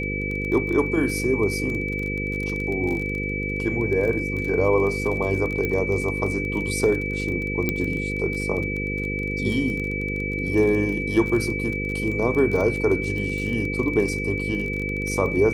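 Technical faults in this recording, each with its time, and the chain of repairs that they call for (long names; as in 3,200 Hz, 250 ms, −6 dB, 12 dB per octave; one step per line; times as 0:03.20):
mains buzz 50 Hz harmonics 10 −29 dBFS
surface crackle 26 per second −28 dBFS
whistle 2,300 Hz −28 dBFS
0:05.65: click −13 dBFS
0:07.69: click −9 dBFS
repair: click removal
hum removal 50 Hz, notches 10
notch filter 2,300 Hz, Q 30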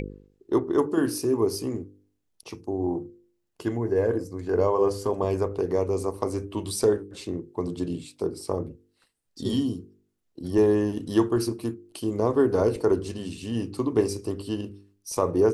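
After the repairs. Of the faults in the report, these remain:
none of them is left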